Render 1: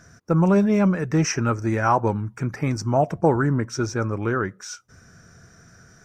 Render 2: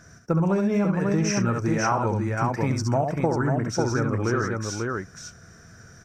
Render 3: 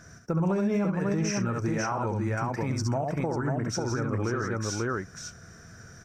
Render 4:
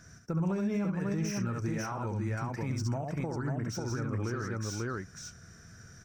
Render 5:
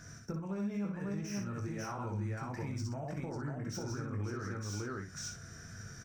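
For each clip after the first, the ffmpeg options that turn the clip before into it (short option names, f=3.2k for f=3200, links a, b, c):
-filter_complex "[0:a]asplit=2[a][b];[b]aecho=0:1:68|543:0.531|0.562[c];[a][c]amix=inputs=2:normalize=0,acompressor=threshold=-19dB:ratio=6"
-af "alimiter=limit=-19dB:level=0:latency=1:release=190"
-filter_complex "[0:a]equalizer=f=660:w=0.55:g=-6,acrossover=split=1200[a][b];[b]asoftclip=type=tanh:threshold=-34.5dB[c];[a][c]amix=inputs=2:normalize=0,volume=-2.5dB"
-filter_complex "[0:a]acompressor=threshold=-40dB:ratio=5,asplit=2[a][b];[b]aecho=0:1:20|59:0.473|0.398[c];[a][c]amix=inputs=2:normalize=0,volume=2dB"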